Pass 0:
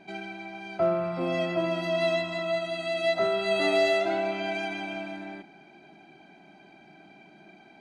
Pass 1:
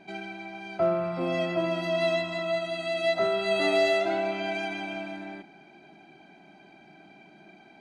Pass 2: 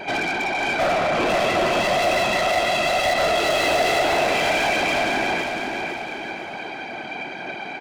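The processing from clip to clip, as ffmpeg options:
-af anull
-filter_complex "[0:a]afftfilt=real='hypot(re,im)*cos(2*PI*random(0))':imag='hypot(re,im)*sin(2*PI*random(1))':win_size=512:overlap=0.75,asplit=2[s0][s1];[s1]highpass=f=720:p=1,volume=50.1,asoftclip=type=tanh:threshold=0.15[s2];[s0][s2]amix=inputs=2:normalize=0,lowpass=f=3900:p=1,volume=0.501,aecho=1:1:504|1008|1512|2016|2520:0.531|0.234|0.103|0.0452|0.0199,volume=1.26"

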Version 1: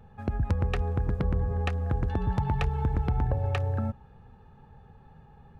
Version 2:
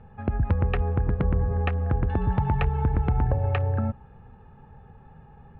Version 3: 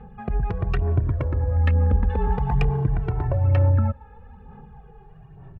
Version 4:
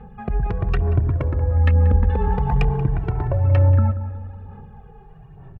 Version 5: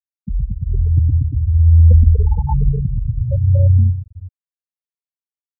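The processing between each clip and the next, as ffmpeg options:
-af "lowpass=f=2900:w=0.5412,lowpass=f=2900:w=1.3066,volume=1.5"
-filter_complex "[0:a]aphaser=in_gain=1:out_gain=1:delay=2.4:decay=0.5:speed=1.1:type=sinusoidal,asoftclip=type=tanh:threshold=0.211,asplit=2[s0][s1];[s1]adelay=2,afreqshift=-0.44[s2];[s0][s2]amix=inputs=2:normalize=1,volume=1.5"
-filter_complex "[0:a]asplit=2[s0][s1];[s1]adelay=183,lowpass=f=1600:p=1,volume=0.224,asplit=2[s2][s3];[s3]adelay=183,lowpass=f=1600:p=1,volume=0.54,asplit=2[s4][s5];[s5]adelay=183,lowpass=f=1600:p=1,volume=0.54,asplit=2[s6][s7];[s7]adelay=183,lowpass=f=1600:p=1,volume=0.54,asplit=2[s8][s9];[s9]adelay=183,lowpass=f=1600:p=1,volume=0.54,asplit=2[s10][s11];[s11]adelay=183,lowpass=f=1600:p=1,volume=0.54[s12];[s0][s2][s4][s6][s8][s10][s12]amix=inputs=7:normalize=0,volume=1.26"
-filter_complex "[0:a]aeval=exprs='val(0)+0.00316*(sin(2*PI*60*n/s)+sin(2*PI*2*60*n/s)/2+sin(2*PI*3*60*n/s)/3+sin(2*PI*4*60*n/s)/4+sin(2*PI*5*60*n/s)/5)':c=same,asplit=2[s0][s1];[s1]adelay=121,lowpass=f=930:p=1,volume=0.562,asplit=2[s2][s3];[s3]adelay=121,lowpass=f=930:p=1,volume=0.5,asplit=2[s4][s5];[s5]adelay=121,lowpass=f=930:p=1,volume=0.5,asplit=2[s6][s7];[s7]adelay=121,lowpass=f=930:p=1,volume=0.5,asplit=2[s8][s9];[s9]adelay=121,lowpass=f=930:p=1,volume=0.5,asplit=2[s10][s11];[s11]adelay=121,lowpass=f=930:p=1,volume=0.5[s12];[s0][s2][s4][s6][s8][s10][s12]amix=inputs=7:normalize=0,afftfilt=real='re*gte(hypot(re,im),0.447)':imag='im*gte(hypot(re,im),0.447)':win_size=1024:overlap=0.75,volume=1.26"

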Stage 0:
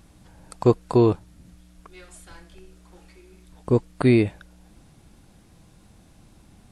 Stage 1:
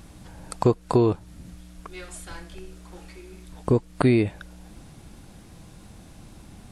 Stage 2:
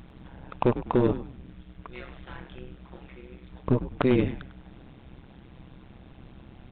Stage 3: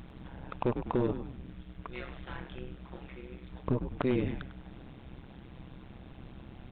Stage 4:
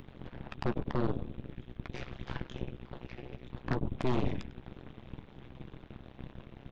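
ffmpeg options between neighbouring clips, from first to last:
-af "acompressor=threshold=0.0501:ratio=2.5,volume=2.11"
-filter_complex "[0:a]aresample=8000,asoftclip=type=hard:threshold=0.211,aresample=44100,tremolo=f=130:d=0.919,asplit=5[s0][s1][s2][s3][s4];[s1]adelay=100,afreqshift=-76,volume=0.251[s5];[s2]adelay=200,afreqshift=-152,volume=0.0902[s6];[s3]adelay=300,afreqshift=-228,volume=0.0327[s7];[s4]adelay=400,afreqshift=-304,volume=0.0117[s8];[s0][s5][s6][s7][s8]amix=inputs=5:normalize=0,volume=1.19"
-af "alimiter=limit=0.106:level=0:latency=1:release=167"
-filter_complex "[0:a]acrossover=split=260|3000[s0][s1][s2];[s1]acompressor=threshold=0.00398:ratio=2.5[s3];[s0][s3][s2]amix=inputs=3:normalize=0,aeval=exprs='0.1*(cos(1*acos(clip(val(0)/0.1,-1,1)))-cos(1*PI/2))+0.0316*(cos(5*acos(clip(val(0)/0.1,-1,1)))-cos(5*PI/2))+0.0251*(cos(7*acos(clip(val(0)/0.1,-1,1)))-cos(7*PI/2))+0.0398*(cos(8*acos(clip(val(0)/0.1,-1,1)))-cos(8*PI/2))':c=same,asplit=2[s4][s5];[s5]adelay=14,volume=0.211[s6];[s4][s6]amix=inputs=2:normalize=0,volume=0.708"

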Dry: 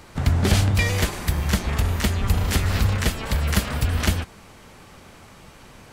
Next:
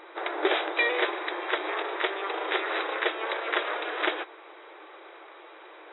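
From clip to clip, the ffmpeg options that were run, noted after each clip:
-af "equalizer=f=2900:t=o:w=0.33:g=-7.5,afftfilt=real='re*between(b*sr/4096,310,3900)':imag='im*between(b*sr/4096,310,3900)':win_size=4096:overlap=0.75,volume=1.26"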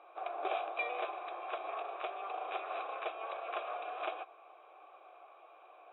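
-filter_complex "[0:a]asplit=3[s0][s1][s2];[s0]bandpass=f=730:t=q:w=8,volume=1[s3];[s1]bandpass=f=1090:t=q:w=8,volume=0.501[s4];[s2]bandpass=f=2440:t=q:w=8,volume=0.355[s5];[s3][s4][s5]amix=inputs=3:normalize=0"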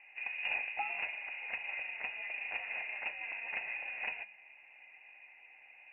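-af "bandreject=f=375.4:t=h:w=4,bandreject=f=750.8:t=h:w=4,bandreject=f=1126.2:t=h:w=4,bandreject=f=1501.6:t=h:w=4,bandreject=f=1877:t=h:w=4,bandreject=f=2252.4:t=h:w=4,bandreject=f=2627.8:t=h:w=4,bandreject=f=3003.2:t=h:w=4,bandreject=f=3378.6:t=h:w=4,bandreject=f=3754:t=h:w=4,bandreject=f=4129.4:t=h:w=4,bandreject=f=4504.8:t=h:w=4,bandreject=f=4880.2:t=h:w=4,bandreject=f=5255.6:t=h:w=4,bandreject=f=5631:t=h:w=4,bandreject=f=6006.4:t=h:w=4,bandreject=f=6381.8:t=h:w=4,bandreject=f=6757.2:t=h:w=4,bandreject=f=7132.6:t=h:w=4,bandreject=f=7508:t=h:w=4,bandreject=f=7883.4:t=h:w=4,bandreject=f=8258.8:t=h:w=4,bandreject=f=8634.2:t=h:w=4,bandreject=f=9009.6:t=h:w=4,bandreject=f=9385:t=h:w=4,bandreject=f=9760.4:t=h:w=4,bandreject=f=10135.8:t=h:w=4,bandreject=f=10511.2:t=h:w=4,bandreject=f=10886.6:t=h:w=4,bandreject=f=11262:t=h:w=4,bandreject=f=11637.4:t=h:w=4,bandreject=f=12012.8:t=h:w=4,bandreject=f=12388.2:t=h:w=4,lowpass=f=2700:t=q:w=0.5098,lowpass=f=2700:t=q:w=0.6013,lowpass=f=2700:t=q:w=0.9,lowpass=f=2700:t=q:w=2.563,afreqshift=-3200"

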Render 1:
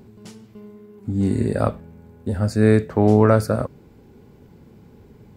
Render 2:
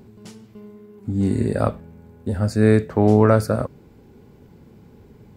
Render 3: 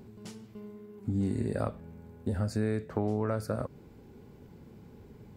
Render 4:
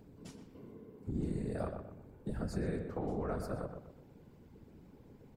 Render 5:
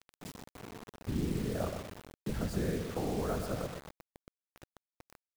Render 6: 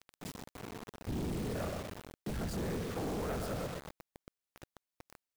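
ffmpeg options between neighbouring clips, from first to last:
-af anull
-af "acompressor=threshold=0.0708:ratio=5,volume=0.631"
-filter_complex "[0:a]afftfilt=real='hypot(re,im)*cos(2*PI*random(0))':imag='hypot(re,im)*sin(2*PI*random(1))':win_size=512:overlap=0.75,asplit=2[s0][s1];[s1]adelay=123,lowpass=f=1800:p=1,volume=0.501,asplit=2[s2][s3];[s3]adelay=123,lowpass=f=1800:p=1,volume=0.38,asplit=2[s4][s5];[s5]adelay=123,lowpass=f=1800:p=1,volume=0.38,asplit=2[s6][s7];[s7]adelay=123,lowpass=f=1800:p=1,volume=0.38,asplit=2[s8][s9];[s9]adelay=123,lowpass=f=1800:p=1,volume=0.38[s10];[s0][s2][s4][s6][s8][s10]amix=inputs=6:normalize=0,volume=0.891"
-af "acrusher=bits=7:mix=0:aa=0.000001,volume=1.41"
-af "asoftclip=type=tanh:threshold=0.0158,volume=1.41"

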